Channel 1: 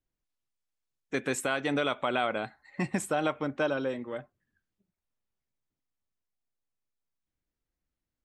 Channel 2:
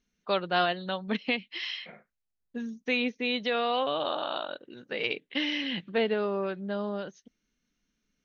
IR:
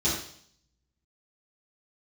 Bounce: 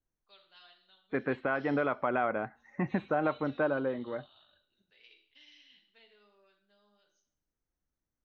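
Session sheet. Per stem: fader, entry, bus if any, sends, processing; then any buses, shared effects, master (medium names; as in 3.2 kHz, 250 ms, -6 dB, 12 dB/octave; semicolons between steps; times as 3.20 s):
-0.5 dB, 0.00 s, no send, low-pass 1.9 kHz 24 dB/octave
-18.5 dB, 0.00 s, send -13.5 dB, differentiator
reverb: on, RT60 0.60 s, pre-delay 3 ms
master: none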